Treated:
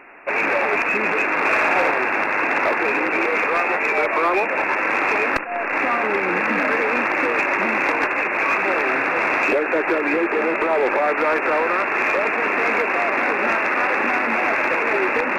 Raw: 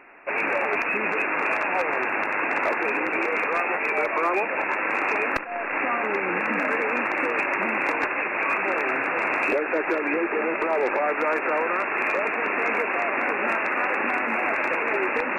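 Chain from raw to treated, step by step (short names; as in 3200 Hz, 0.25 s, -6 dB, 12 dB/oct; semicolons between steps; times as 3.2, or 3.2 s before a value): 1.39–1.91 flutter echo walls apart 10.1 m, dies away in 0.98 s; in parallel at -7 dB: hard clip -22 dBFS, distortion -12 dB; on the sum: gain +2 dB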